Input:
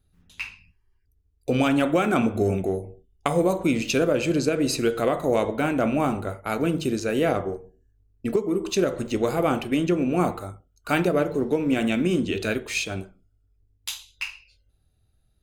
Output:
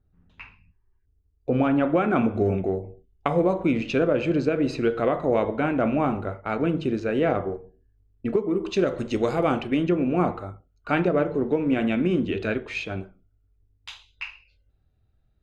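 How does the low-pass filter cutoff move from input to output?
0:01.55 1,400 Hz
0:02.39 2,500 Hz
0:08.44 2,500 Hz
0:09.19 6,000 Hz
0:09.97 2,500 Hz

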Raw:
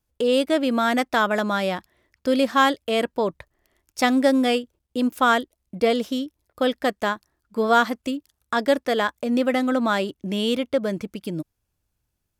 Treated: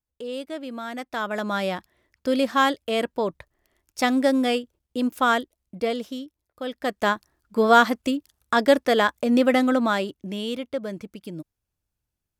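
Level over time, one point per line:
0:00.93 −12.5 dB
0:01.57 −2 dB
0:05.37 −2 dB
0:06.63 −10.5 dB
0:07.09 +2.5 dB
0:09.59 +2.5 dB
0:10.46 −6.5 dB

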